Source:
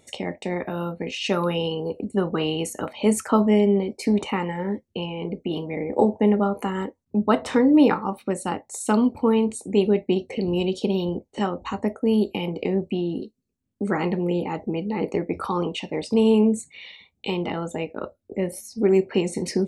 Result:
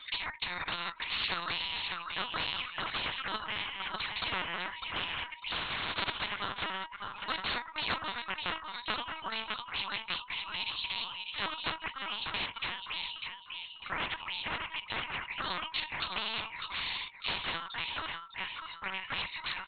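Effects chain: 5.52–6.23 cycle switcher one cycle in 2, muted; rippled Chebyshev high-pass 920 Hz, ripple 9 dB; on a send: feedback echo 0.602 s, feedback 25%, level -13.5 dB; on the sum: LPC vocoder at 8 kHz pitch kept; spectral compressor 4:1

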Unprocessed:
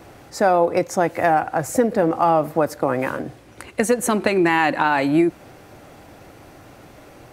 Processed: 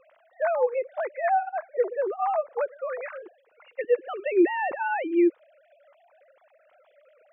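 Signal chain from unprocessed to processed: sine-wave speech; gain -7 dB

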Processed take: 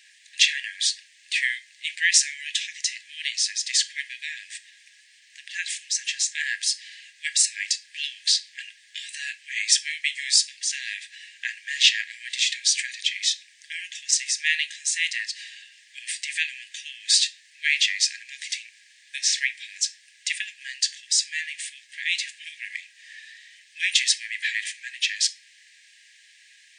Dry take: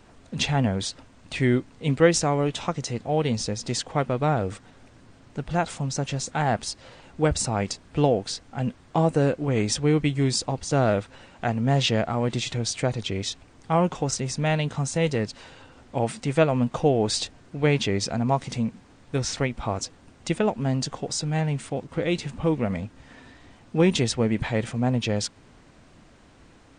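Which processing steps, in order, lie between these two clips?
7.84–9.18 dynamic EQ 3900 Hz, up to +5 dB, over -45 dBFS, Q 1.3; brick-wall FIR high-pass 1600 Hz; shoebox room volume 270 m³, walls furnished, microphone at 0.52 m; gain +8.5 dB

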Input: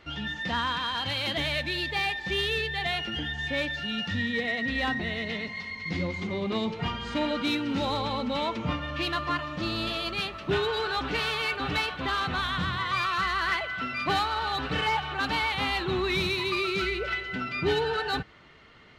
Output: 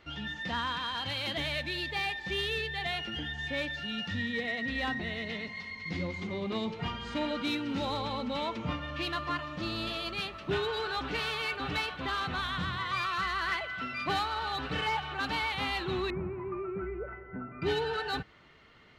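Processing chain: 16.1–17.62 Bessel low-pass 980 Hz, order 8; gain -4.5 dB

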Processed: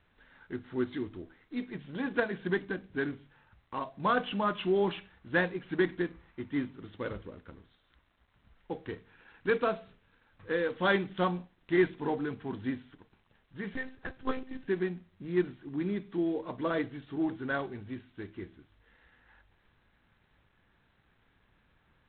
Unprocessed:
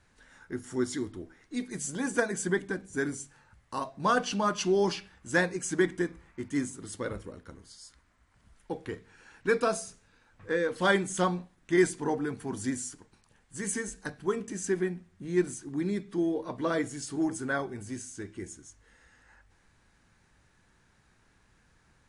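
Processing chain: 13.73–14.68 monotone LPC vocoder at 8 kHz 260 Hz; gain -2 dB; G.726 24 kbps 8000 Hz

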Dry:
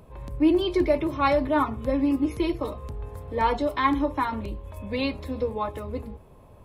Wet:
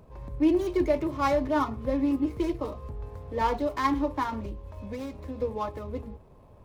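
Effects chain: median filter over 15 samples; 4.5–5.4 compressor, threshold -30 dBFS, peak gain reduction 7 dB; gain -2.5 dB

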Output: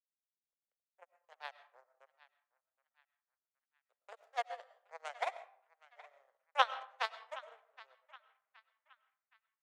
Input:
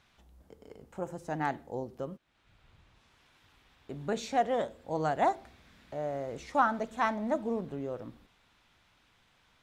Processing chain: power-law curve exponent 3; steep high-pass 500 Hz 48 dB/oct; on a send at -9.5 dB: reverb RT60 0.65 s, pre-delay 60 ms; on the sum: transient shaper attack +1 dB, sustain -7 dB; narrowing echo 0.77 s, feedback 44%, band-pass 1900 Hz, level -17.5 dB; gain +4 dB

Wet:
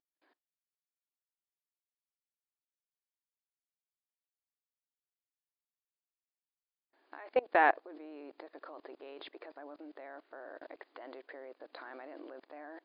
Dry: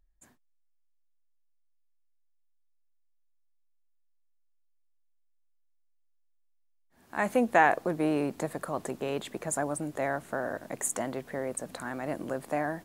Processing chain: brick-wall FIR band-pass 270–5000 Hz; level quantiser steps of 24 dB

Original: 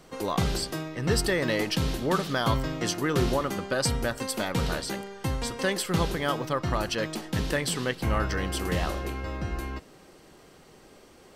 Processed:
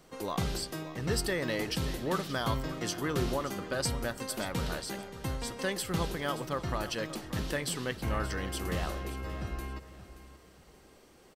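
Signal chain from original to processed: high shelf 11000 Hz +5 dB; on a send: feedback echo 0.577 s, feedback 30%, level -14.5 dB; on the sum: gain -6 dB

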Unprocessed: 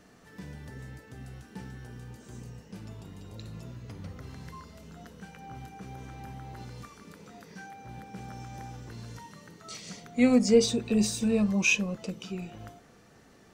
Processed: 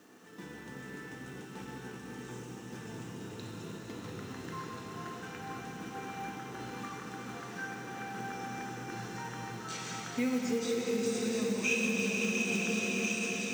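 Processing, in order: speaker cabinet 220–8900 Hz, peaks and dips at 340 Hz +5 dB, 610 Hz -7 dB, 2100 Hz -4 dB, 4600 Hz -7 dB; thin delay 0.694 s, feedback 76%, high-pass 2600 Hz, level -9 dB; reverb RT60 5.4 s, pre-delay 3 ms, DRR -1.5 dB; compressor 4:1, threshold -32 dBFS, peak gain reduction 15 dB; diffused feedback echo 0.559 s, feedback 67%, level -7 dB; companded quantiser 6-bit; dynamic EQ 1700 Hz, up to +6 dB, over -54 dBFS, Q 0.95

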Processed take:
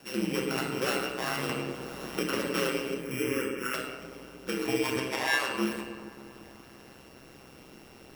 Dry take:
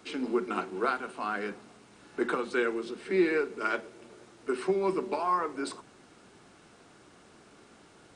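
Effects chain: sample sorter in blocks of 16 samples; 4.96–5.49 weighting filter A; in parallel at +1 dB: compressor, threshold -36 dBFS, peak gain reduction 15 dB; on the sum: requantised 10-bit, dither none; 2.97–3.74 fixed phaser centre 1700 Hz, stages 4; band-limited delay 0.194 s, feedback 71%, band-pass 630 Hz, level -14.5 dB; reverb RT60 1.2 s, pre-delay 4 ms, DRR -1.5 dB; ring modulator 65 Hz; 1.49–2.44 three-band squash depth 70%; gain -3 dB

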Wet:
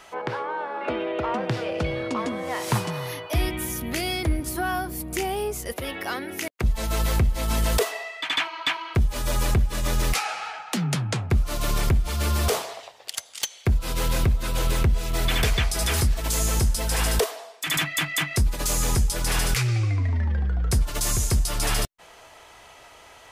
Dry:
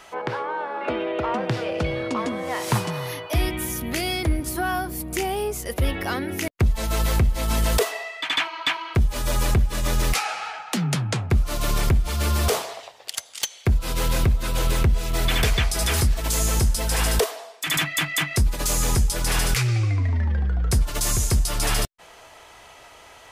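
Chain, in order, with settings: 5.72–6.64 HPF 410 Hz 6 dB/oct; gain -1.5 dB

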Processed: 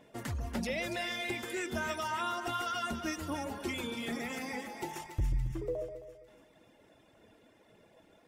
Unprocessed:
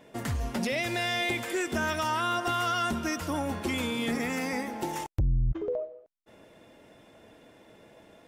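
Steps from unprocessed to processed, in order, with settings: reverb removal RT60 1.3 s; phaser 1.8 Hz, delay 3.6 ms, feedback 24%; on a send: split-band echo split 1300 Hz, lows 0.133 s, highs 0.284 s, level -8 dB; on the sum: gain -5.5 dB

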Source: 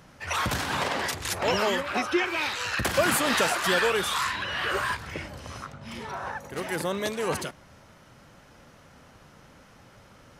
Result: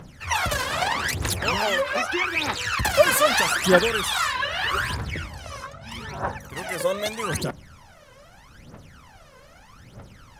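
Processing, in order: phaser 0.8 Hz, delay 2 ms, feedback 78%

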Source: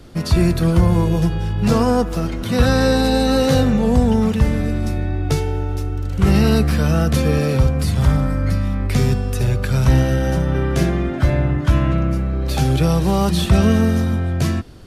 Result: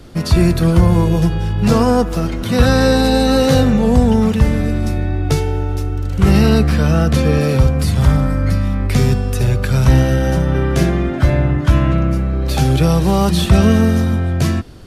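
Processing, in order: 6.46–7.41 high shelf 9100 Hz -8.5 dB; gain +3 dB

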